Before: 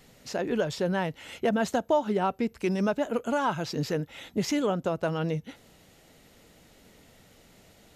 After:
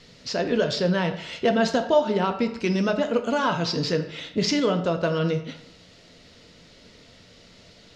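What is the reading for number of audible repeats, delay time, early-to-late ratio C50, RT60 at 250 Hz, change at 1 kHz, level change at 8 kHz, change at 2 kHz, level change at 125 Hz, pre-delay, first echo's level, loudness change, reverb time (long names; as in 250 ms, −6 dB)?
no echo audible, no echo audible, 10.0 dB, 0.70 s, +3.0 dB, +3.5 dB, +5.5 dB, +5.0 dB, 3 ms, no echo audible, +5.0 dB, 0.80 s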